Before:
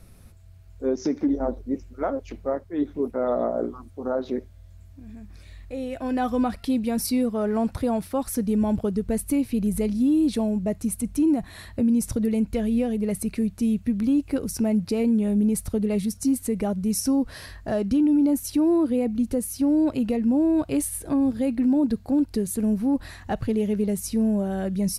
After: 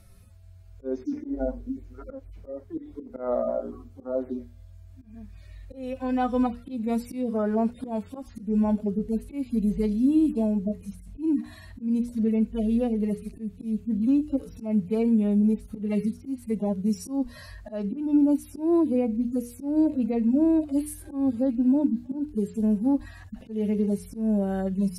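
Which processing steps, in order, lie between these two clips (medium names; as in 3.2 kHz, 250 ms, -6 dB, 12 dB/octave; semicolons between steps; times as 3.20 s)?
harmonic-percussive separation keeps harmonic; slow attack 174 ms; hum notches 60/120/180/240/300/360/420/480 Hz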